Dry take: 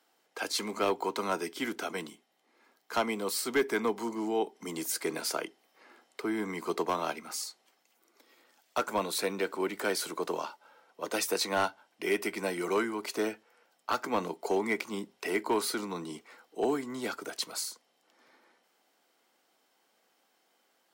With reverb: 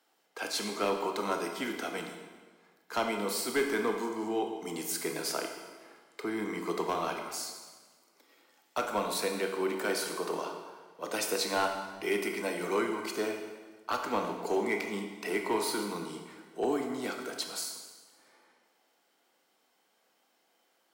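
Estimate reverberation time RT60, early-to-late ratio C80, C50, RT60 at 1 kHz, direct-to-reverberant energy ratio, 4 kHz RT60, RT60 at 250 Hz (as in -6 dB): 1.5 s, 7.0 dB, 5.5 dB, 1.4 s, 3.5 dB, 1.2 s, 1.5 s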